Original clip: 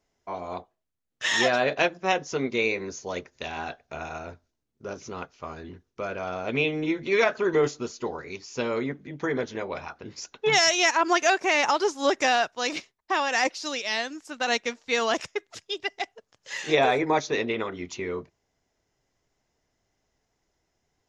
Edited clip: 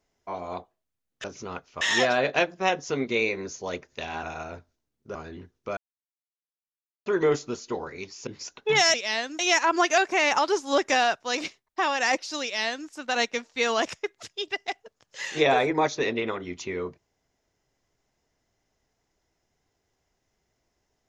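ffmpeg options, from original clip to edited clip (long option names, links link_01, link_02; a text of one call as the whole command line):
ffmpeg -i in.wav -filter_complex "[0:a]asplit=10[link_01][link_02][link_03][link_04][link_05][link_06][link_07][link_08][link_09][link_10];[link_01]atrim=end=1.242[link_11];[link_02]atrim=start=4.898:end=5.472[link_12];[link_03]atrim=start=1.238:end=3.662[link_13];[link_04]atrim=start=3.978:end=4.902[link_14];[link_05]atrim=start=5.468:end=6.09,asetpts=PTS-STARTPTS,afade=type=out:start_time=0.618:duration=0.004:curve=hsin[link_15];[link_06]atrim=start=6.09:end=7.38,asetpts=PTS-STARTPTS,volume=0[link_16];[link_07]atrim=start=7.38:end=8.592,asetpts=PTS-STARTPTS,afade=type=in:duration=0.004:curve=hsin[link_17];[link_08]atrim=start=10.038:end=10.712[link_18];[link_09]atrim=start=13.748:end=14.202[link_19];[link_10]atrim=start=10.708[link_20];[link_11][link_12]acrossfade=duration=0.004:curve1=hsin:curve2=hsin[link_21];[link_21][link_13]acrossfade=duration=0.004:curve1=hsin:curve2=hsin[link_22];[link_22][link_14]acrossfade=duration=0.004:curve1=hsin:curve2=hsin[link_23];[link_15][link_16][link_17]concat=n=3:v=0:a=1[link_24];[link_23][link_24]acrossfade=duration=0.004:curve1=hsin:curve2=hsin[link_25];[link_25][link_18]acrossfade=duration=0.004:curve1=hsin:curve2=hsin[link_26];[link_26][link_19]acrossfade=duration=0.004:curve1=hsin:curve2=hsin[link_27];[link_27][link_20]acrossfade=duration=0.004:curve1=hsin:curve2=hsin" out.wav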